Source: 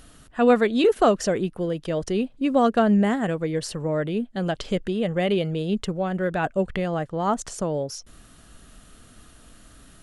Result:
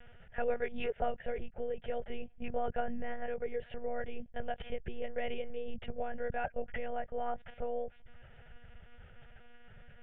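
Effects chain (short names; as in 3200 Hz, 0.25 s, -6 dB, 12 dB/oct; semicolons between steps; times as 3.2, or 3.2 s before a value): compressor 2.5:1, threshold -31 dBFS, peak gain reduction 12 dB; monotone LPC vocoder at 8 kHz 240 Hz; fixed phaser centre 1100 Hz, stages 6; gain -1.5 dB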